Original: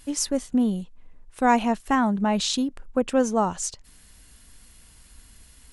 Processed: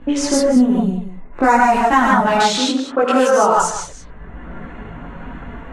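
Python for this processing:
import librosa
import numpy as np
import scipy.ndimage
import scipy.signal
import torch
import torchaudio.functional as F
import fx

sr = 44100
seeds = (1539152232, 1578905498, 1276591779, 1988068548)

p1 = fx.wiener(x, sr, points=9)
p2 = fx.peak_eq(p1, sr, hz=3200.0, db=-15.0, octaves=0.22, at=(0.64, 1.67))
p3 = fx.highpass(p2, sr, hz=350.0, slope=12, at=(2.3, 3.55), fade=0.02)
p4 = fx.rev_gated(p3, sr, seeds[0], gate_ms=170, shape='rising', drr_db=-3.0)
p5 = fx.env_lowpass(p4, sr, base_hz=990.0, full_db=-18.0)
p6 = fx.over_compress(p5, sr, threshold_db=-20.0, ratio=-1.0)
p7 = p5 + (p6 * librosa.db_to_amplitude(-1.0))
p8 = fx.chorus_voices(p7, sr, voices=4, hz=0.41, base_ms=20, depth_ms=3.9, mix_pct=60)
p9 = p8 + fx.echo_single(p8, sr, ms=184, db=-16.0, dry=0)
p10 = fx.dynamic_eq(p9, sr, hz=1300.0, q=1.1, threshold_db=-35.0, ratio=4.0, max_db=5)
p11 = fx.band_squash(p10, sr, depth_pct=70)
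y = p11 * librosa.db_to_amplitude(2.5)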